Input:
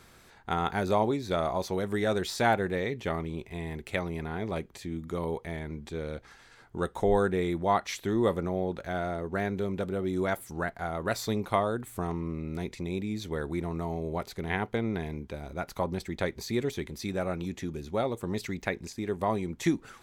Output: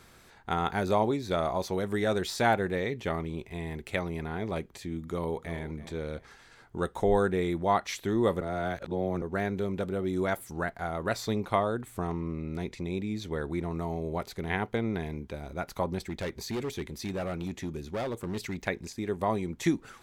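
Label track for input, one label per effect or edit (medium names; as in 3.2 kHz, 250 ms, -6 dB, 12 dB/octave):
4.960000	5.590000	echo throw 330 ms, feedback 30%, level -14.5 dB
8.410000	9.220000	reverse
11.080000	13.710000	treble shelf 9.1 kHz -7 dB
16.010000	18.680000	overload inside the chain gain 29 dB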